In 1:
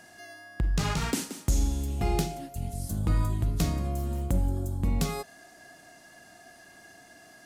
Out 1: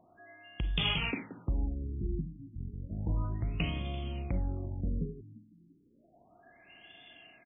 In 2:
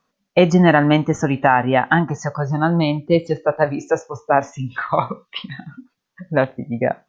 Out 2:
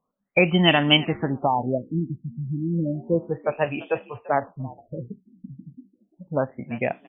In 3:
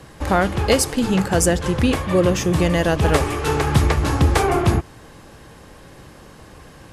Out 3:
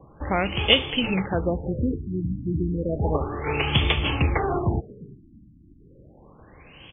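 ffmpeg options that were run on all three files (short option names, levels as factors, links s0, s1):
-filter_complex "[0:a]asplit=4[s0][s1][s2][s3];[s1]adelay=340,afreqshift=61,volume=0.1[s4];[s2]adelay=680,afreqshift=122,volume=0.0331[s5];[s3]adelay=1020,afreqshift=183,volume=0.0108[s6];[s0][s4][s5][s6]amix=inputs=4:normalize=0,aexciter=amount=8.9:drive=7.2:freq=2500,afftfilt=real='re*lt(b*sr/1024,330*pow(3600/330,0.5+0.5*sin(2*PI*0.32*pts/sr)))':imag='im*lt(b*sr/1024,330*pow(3600/330,0.5+0.5*sin(2*PI*0.32*pts/sr)))':win_size=1024:overlap=0.75,volume=0.473"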